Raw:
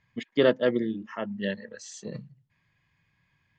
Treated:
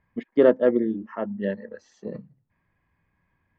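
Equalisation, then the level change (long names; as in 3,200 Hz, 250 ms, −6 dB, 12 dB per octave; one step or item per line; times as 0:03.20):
high-frequency loss of the air 270 metres
parametric band 130 Hz −13 dB 0.78 octaves
parametric band 3,400 Hz −14 dB 2 octaves
+7.0 dB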